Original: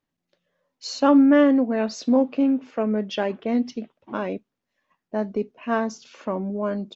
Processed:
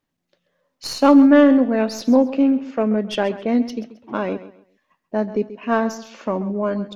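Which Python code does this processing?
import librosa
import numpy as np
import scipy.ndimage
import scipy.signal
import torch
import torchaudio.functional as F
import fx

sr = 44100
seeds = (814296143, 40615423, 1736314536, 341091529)

y = fx.tracing_dist(x, sr, depth_ms=0.029)
y = fx.echo_feedback(y, sr, ms=134, feedback_pct=27, wet_db=-15)
y = F.gain(torch.from_numpy(y), 4.0).numpy()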